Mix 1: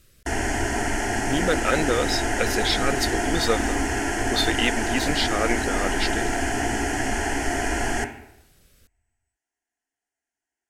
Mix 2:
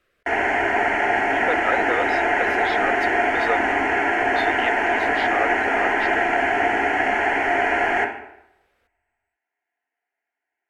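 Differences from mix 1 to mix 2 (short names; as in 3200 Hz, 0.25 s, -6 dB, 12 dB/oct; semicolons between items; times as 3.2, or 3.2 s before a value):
background: send +11.0 dB; master: add three-band isolator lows -21 dB, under 380 Hz, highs -23 dB, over 2600 Hz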